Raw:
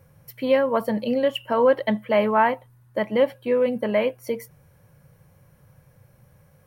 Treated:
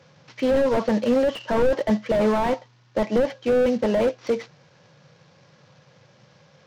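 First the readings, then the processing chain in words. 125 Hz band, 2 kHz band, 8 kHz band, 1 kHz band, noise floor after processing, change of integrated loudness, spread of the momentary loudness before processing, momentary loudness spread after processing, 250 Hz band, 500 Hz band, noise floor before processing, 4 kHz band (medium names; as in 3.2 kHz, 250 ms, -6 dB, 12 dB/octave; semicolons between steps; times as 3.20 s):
+4.0 dB, -3.5 dB, no reading, -4.0 dB, -57 dBFS, 0.0 dB, 12 LU, 7 LU, +2.5 dB, 0.0 dB, -58 dBFS, -2.0 dB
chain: CVSD coder 32 kbps; Bessel high-pass 200 Hz, order 4; slew-rate limiter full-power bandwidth 35 Hz; trim +6 dB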